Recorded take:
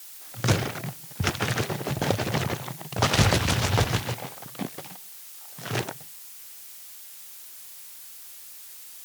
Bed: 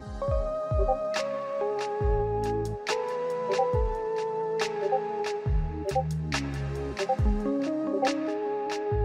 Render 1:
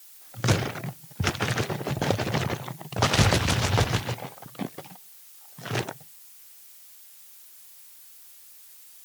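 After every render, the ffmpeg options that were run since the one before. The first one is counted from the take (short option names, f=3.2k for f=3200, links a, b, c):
-af "afftdn=nr=7:nf=-44"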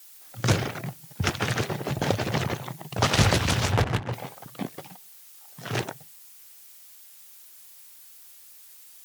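-filter_complex "[0:a]asplit=3[a][b][c];[a]afade=t=out:st=3.71:d=0.02[d];[b]adynamicsmooth=sensitivity=3.5:basefreq=530,afade=t=in:st=3.71:d=0.02,afade=t=out:st=4.12:d=0.02[e];[c]afade=t=in:st=4.12:d=0.02[f];[d][e][f]amix=inputs=3:normalize=0"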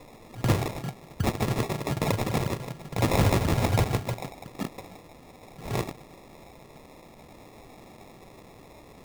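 -af "acrusher=samples=29:mix=1:aa=0.000001,asoftclip=type=hard:threshold=-15.5dB"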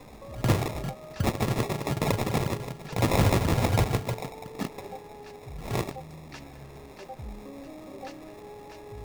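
-filter_complex "[1:a]volume=-15.5dB[a];[0:a][a]amix=inputs=2:normalize=0"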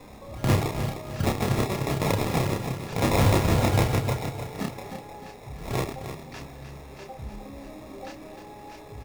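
-filter_complex "[0:a]asplit=2[a][b];[b]adelay=30,volume=-3dB[c];[a][c]amix=inputs=2:normalize=0,aecho=1:1:305|610|915|1220:0.335|0.131|0.0509|0.0199"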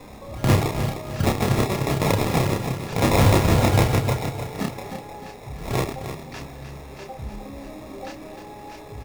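-af "volume=4dB"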